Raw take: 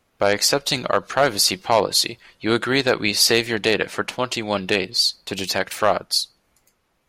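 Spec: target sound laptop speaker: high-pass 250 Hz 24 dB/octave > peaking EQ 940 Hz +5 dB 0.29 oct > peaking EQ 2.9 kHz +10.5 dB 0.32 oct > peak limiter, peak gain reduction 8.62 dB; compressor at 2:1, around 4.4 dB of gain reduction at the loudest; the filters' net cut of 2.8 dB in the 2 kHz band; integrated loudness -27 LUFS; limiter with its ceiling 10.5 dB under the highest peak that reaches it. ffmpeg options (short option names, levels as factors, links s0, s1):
-af "equalizer=f=2000:t=o:g=-7.5,acompressor=threshold=0.0891:ratio=2,alimiter=limit=0.141:level=0:latency=1,highpass=f=250:w=0.5412,highpass=f=250:w=1.3066,equalizer=f=940:t=o:w=0.29:g=5,equalizer=f=2900:t=o:w=0.32:g=10.5,volume=1.68,alimiter=limit=0.15:level=0:latency=1"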